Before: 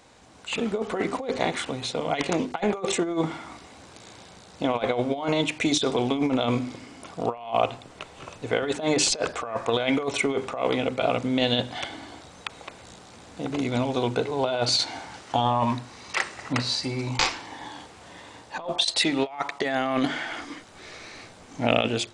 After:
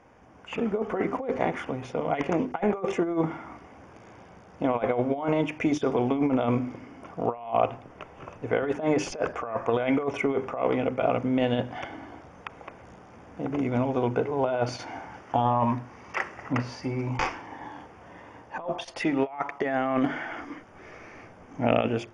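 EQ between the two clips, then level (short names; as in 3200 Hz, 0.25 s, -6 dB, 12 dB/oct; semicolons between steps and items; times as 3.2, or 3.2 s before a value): running mean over 11 samples; 0.0 dB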